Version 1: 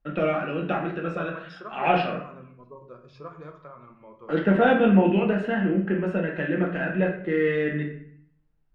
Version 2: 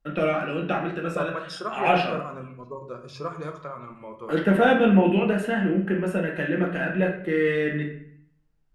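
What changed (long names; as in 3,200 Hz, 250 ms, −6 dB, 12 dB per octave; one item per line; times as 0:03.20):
second voice +7.5 dB
master: remove high-frequency loss of the air 170 metres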